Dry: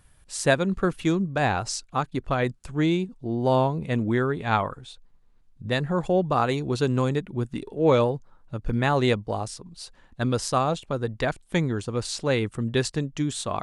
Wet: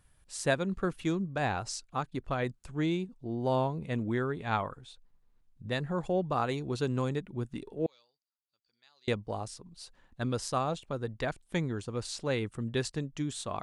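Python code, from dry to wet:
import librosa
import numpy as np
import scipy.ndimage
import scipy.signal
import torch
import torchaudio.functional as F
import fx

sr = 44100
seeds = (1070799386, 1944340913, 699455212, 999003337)

y = fx.bandpass_q(x, sr, hz=4700.0, q=16.0, at=(7.86, 9.08))
y = F.gain(torch.from_numpy(y), -7.5).numpy()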